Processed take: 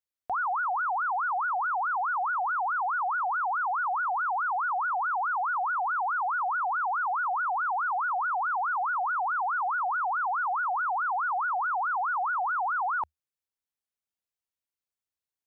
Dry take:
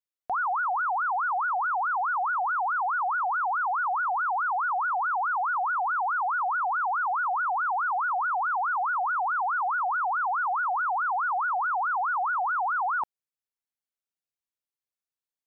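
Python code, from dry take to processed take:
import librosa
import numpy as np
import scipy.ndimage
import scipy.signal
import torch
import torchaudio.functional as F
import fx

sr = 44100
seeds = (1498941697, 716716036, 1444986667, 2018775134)

y = fx.peak_eq(x, sr, hz=77.0, db=9.0, octaves=0.45)
y = y * librosa.db_to_amplitude(-1.5)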